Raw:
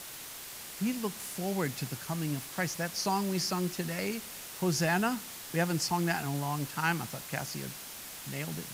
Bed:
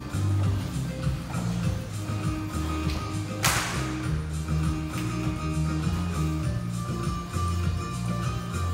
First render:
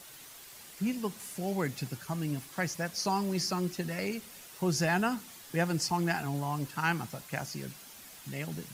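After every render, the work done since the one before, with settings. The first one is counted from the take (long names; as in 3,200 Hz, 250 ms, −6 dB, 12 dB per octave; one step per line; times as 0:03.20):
broadband denoise 8 dB, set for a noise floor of −45 dBFS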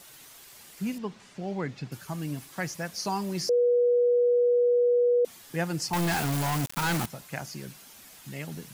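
0:00.98–0:01.92: high-frequency loss of the air 140 metres
0:03.49–0:05.25: beep over 485 Hz −19 dBFS
0:05.93–0:07.06: log-companded quantiser 2 bits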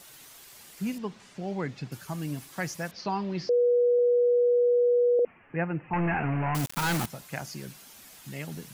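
0:02.91–0:03.99: low-pass filter 4,100 Hz 24 dB per octave
0:05.19–0:06.55: Butterworth low-pass 2,700 Hz 96 dB per octave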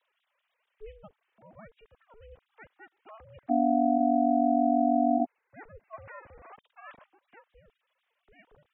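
three sine waves on the formant tracks
ring modulation 220 Hz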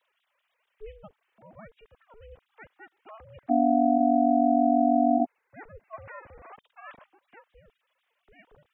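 level +2.5 dB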